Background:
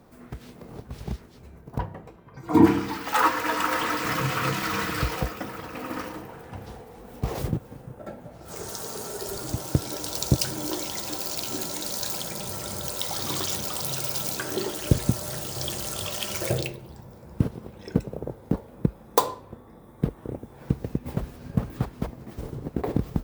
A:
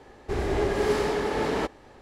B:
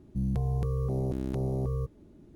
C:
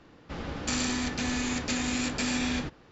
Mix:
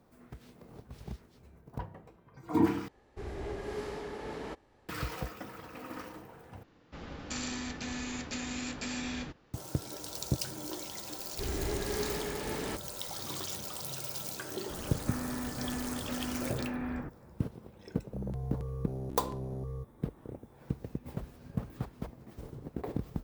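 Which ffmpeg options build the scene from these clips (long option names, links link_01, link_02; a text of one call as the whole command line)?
ffmpeg -i bed.wav -i cue0.wav -i cue1.wav -i cue2.wav -filter_complex "[1:a]asplit=2[link_01][link_02];[3:a]asplit=2[link_03][link_04];[0:a]volume=-10dB[link_05];[link_01]equalizer=frequency=75:width_type=o:width=2.5:gain=3.5[link_06];[link_02]equalizer=frequency=710:width=0.46:gain=-7.5[link_07];[link_04]lowpass=frequency=1700:width=0.5412,lowpass=frequency=1700:width=1.3066[link_08];[link_05]asplit=3[link_09][link_10][link_11];[link_09]atrim=end=2.884[link_12];[link_06]atrim=end=2.01,asetpts=PTS-STARTPTS,volume=-14.5dB[link_13];[link_10]atrim=start=4.886:end=6.634[link_14];[link_03]atrim=end=2.91,asetpts=PTS-STARTPTS,volume=-8dB[link_15];[link_11]atrim=start=9.536[link_16];[link_07]atrim=end=2.01,asetpts=PTS-STARTPTS,volume=-5.5dB,afade=type=in:duration=0.004:curve=hsin,afade=type=out:start_time=2.006:duration=0.004:curve=hsin,adelay=11100[link_17];[link_08]atrim=end=2.91,asetpts=PTS-STARTPTS,volume=-6dB,afade=type=in:duration=0.004:curve=hsin,afade=type=out:start_time=2.906:duration=0.004:curve=hsin,adelay=14400[link_18];[2:a]atrim=end=2.35,asetpts=PTS-STARTPTS,volume=-8.5dB,afade=type=in:duration=0.004:curve=hsin,afade=type=out:start_time=2.346:duration=0.004:curve=hsin,adelay=17980[link_19];[link_12][link_13]acrossfade=duration=0.004:curve1=hsin:curve2=hsin[link_20];[link_20][link_14]acrossfade=duration=0.004:curve1=hsin:curve2=hsin[link_21];[link_21][link_15]acrossfade=duration=0.004:curve1=hsin:curve2=hsin[link_22];[link_22][link_16]acrossfade=duration=0.004:curve1=hsin:curve2=hsin[link_23];[link_23][link_17][link_18][link_19]amix=inputs=4:normalize=0" out.wav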